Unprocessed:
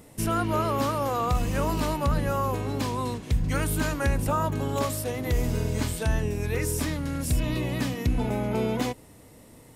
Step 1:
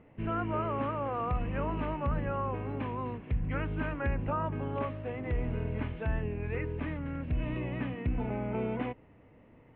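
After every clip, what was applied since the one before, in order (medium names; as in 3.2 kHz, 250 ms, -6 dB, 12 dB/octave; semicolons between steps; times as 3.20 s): steep low-pass 2.8 kHz 48 dB/octave; trim -6.5 dB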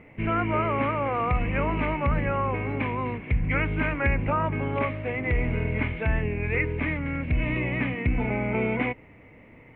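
peaking EQ 2.2 kHz +14.5 dB 0.36 oct; trim +6.5 dB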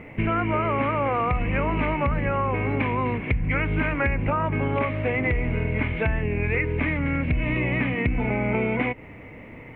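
compression, threshold -29 dBFS, peak gain reduction 10 dB; trim +8.5 dB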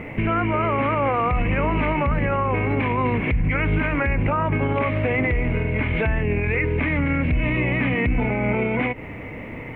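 peak limiter -21.5 dBFS, peak gain reduction 11 dB; trim +8 dB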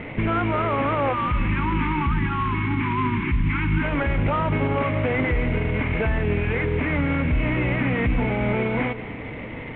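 CVSD coder 16 kbps; spectral selection erased 1.13–3.82 s, 390–830 Hz; two-band feedback delay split 450 Hz, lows 333 ms, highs 178 ms, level -15.5 dB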